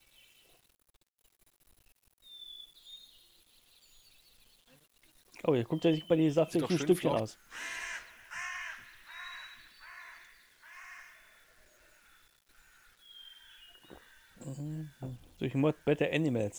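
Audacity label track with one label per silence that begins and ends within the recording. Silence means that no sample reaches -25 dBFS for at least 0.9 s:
7.230000	15.440000	silence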